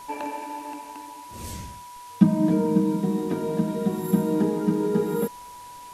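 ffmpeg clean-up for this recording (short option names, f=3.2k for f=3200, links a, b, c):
-af "adeclick=t=4,bandreject=f=980:w=30,afwtdn=0.0035"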